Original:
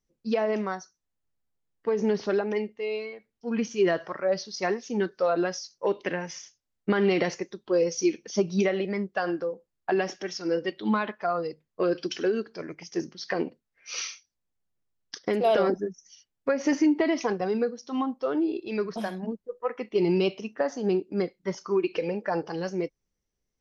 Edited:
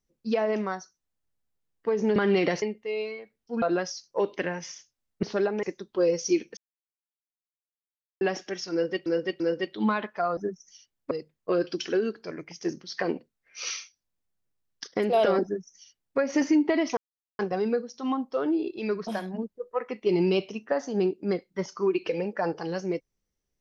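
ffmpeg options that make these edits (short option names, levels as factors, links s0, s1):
-filter_complex "[0:a]asplit=13[s0][s1][s2][s3][s4][s5][s6][s7][s8][s9][s10][s11][s12];[s0]atrim=end=2.162[s13];[s1]atrim=start=6.898:end=7.362[s14];[s2]atrim=start=2.558:end=3.562[s15];[s3]atrim=start=5.288:end=6.902[s16];[s4]atrim=start=2.158:end=2.562[s17];[s5]atrim=start=7.358:end=8.3,asetpts=PTS-STARTPTS,afade=t=out:st=0.938:d=0.004:c=hsin[s18];[s6]atrim=start=8.3:end=9.94,asetpts=PTS-STARTPTS,volume=0[s19];[s7]atrim=start=9.94:end=10.792,asetpts=PTS-STARTPTS,afade=t=in:d=0.004:c=hsin[s20];[s8]atrim=start=10.448:end=10.792[s21];[s9]atrim=start=10.448:end=11.422[s22];[s10]atrim=start=15.748:end=16.492[s23];[s11]atrim=start=11.418:end=17.28,asetpts=PTS-STARTPTS,afade=t=out:st=5.858:d=0.004:c=hsin,apad=pad_dur=0.42[s24];[s12]atrim=start=17.28,asetpts=PTS-STARTPTS,afade=t=in:d=0.004:c=hsin[s25];[s13][s14]acrossfade=d=0.004:c1=hsin:c2=hsin[s26];[s26][s15]acrossfade=d=0.004:c1=hsin:c2=hsin[s27];[s27][s16]acrossfade=d=0.004:c1=hsin:c2=hsin[s28];[s28][s17]acrossfade=d=0.004:c1=hsin:c2=hsin[s29];[s18][s19][s20]concat=n=3:v=0:a=1[s30];[s29][s30]acrossfade=d=0.004:c1=hsin:c2=hsin[s31];[s31][s21]acrossfade=d=0.004:c1=hsin:c2=hsin[s32];[s32][s22]acrossfade=d=0.004:c1=hsin:c2=hsin[s33];[s33][s23]acrossfade=d=0.004:c1=hsin:c2=hsin[s34];[s24][s25]concat=n=2:v=0:a=1[s35];[s34][s35]acrossfade=d=0.004:c1=hsin:c2=hsin"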